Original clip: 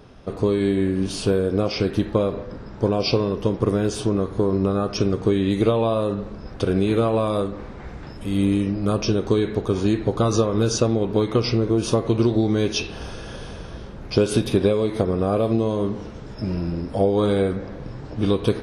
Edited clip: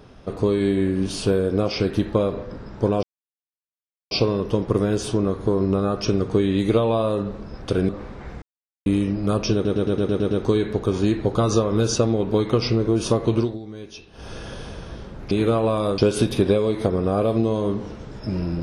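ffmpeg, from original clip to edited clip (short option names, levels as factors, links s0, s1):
-filter_complex "[0:a]asplit=16[s0][s1][s2][s3][s4][s5][s6][s7][s8][s9][s10][s11][s12][s13][s14][s15];[s0]atrim=end=3.03,asetpts=PTS-STARTPTS,afade=t=out:st=3.026:d=0.004:c=hsin,apad=pad_dur=1.08[s16];[s1]atrim=start=3.03:end=6.812,asetpts=PTS-STARTPTS,afade=t=in:d=0.004:c=hsin[s17];[s2]atrim=start=7.478:end=8.01,asetpts=PTS-STARTPTS,afade=t=out:st=0.528:d=0.004:c=hsin[s18];[s3]atrim=start=8.01:end=8.45,asetpts=PTS-STARTPTS,volume=0[s19];[s4]atrim=start=8.45:end=9.242,asetpts=PTS-STARTPTS,afade=t=in:d=0.004:c=hsin[s20];[s5]atrim=start=9.128:end=9.242[s21];[s6]atrim=start=9.128:end=9.242[s22];[s7]atrim=start=9.128:end=9.242[s23];[s8]atrim=start=9.128:end=9.242[s24];[s9]atrim=start=9.128:end=9.242[s25];[s10]atrim=start=9.128:end=9.242[s26];[s11]atrim=start=9.128:end=12.4,asetpts=PTS-STARTPTS,afade=t=out:st=3.042:d=0.23:silence=0.158489[s27];[s12]atrim=start=12.4:end=12.94,asetpts=PTS-STARTPTS,volume=0.158[s28];[s13]atrim=start=12.94:end=14.132,asetpts=PTS-STARTPTS,afade=t=in:d=0.23:silence=0.158489[s29];[s14]atrim=start=6.808:end=7.482[s30];[s15]atrim=start=14.128[s31];[s16][s17]concat=n=2:v=0:a=1[s32];[s18][s19][s20]concat=n=3:v=0:a=1[s33];[s32][s33]acrossfade=d=0.004:c1=hsin:c2=hsin[s34];[s34][s21]acrossfade=d=0.004:c1=hsin:c2=hsin[s35];[s35][s22]acrossfade=d=0.004:c1=hsin:c2=hsin[s36];[s36][s23]acrossfade=d=0.004:c1=hsin:c2=hsin[s37];[s37][s24]acrossfade=d=0.004:c1=hsin:c2=hsin[s38];[s38][s25]acrossfade=d=0.004:c1=hsin:c2=hsin[s39];[s39][s26]acrossfade=d=0.004:c1=hsin:c2=hsin[s40];[s27][s28][s29]concat=n=3:v=0:a=1[s41];[s40][s41]acrossfade=d=0.004:c1=hsin:c2=hsin[s42];[s42][s30]acrossfade=d=0.004:c1=hsin:c2=hsin[s43];[s43][s31]acrossfade=d=0.004:c1=hsin:c2=hsin"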